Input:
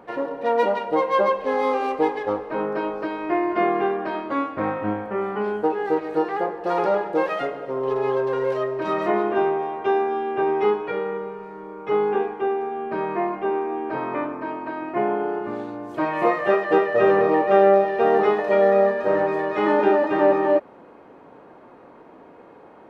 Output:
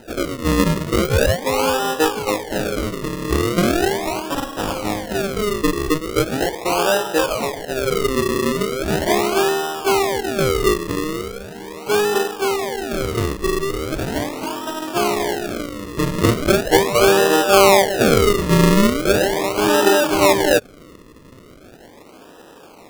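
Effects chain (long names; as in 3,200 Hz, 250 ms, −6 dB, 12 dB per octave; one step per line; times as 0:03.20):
0:04.34–0:05.10: phase distortion by the signal itself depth 0.73 ms
sample-and-hold swept by an LFO 39×, swing 100% 0.39 Hz
level +3.5 dB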